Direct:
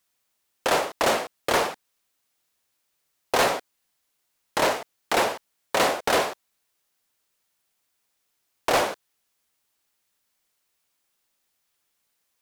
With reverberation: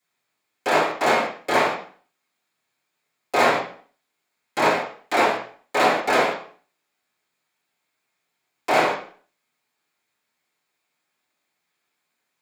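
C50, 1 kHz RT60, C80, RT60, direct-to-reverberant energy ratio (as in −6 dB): 6.0 dB, 0.45 s, 10.5 dB, 0.45 s, −13.0 dB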